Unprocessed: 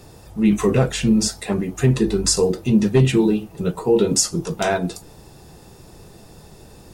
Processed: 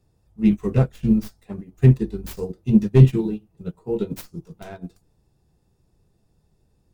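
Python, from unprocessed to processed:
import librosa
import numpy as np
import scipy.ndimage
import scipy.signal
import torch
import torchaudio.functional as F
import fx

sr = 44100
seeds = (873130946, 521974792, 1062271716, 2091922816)

y = fx.tracing_dist(x, sr, depth_ms=0.35)
y = fx.low_shelf(y, sr, hz=230.0, db=11.5)
y = fx.upward_expand(y, sr, threshold_db=-21.0, expansion=2.5)
y = y * 10.0 ** (-1.5 / 20.0)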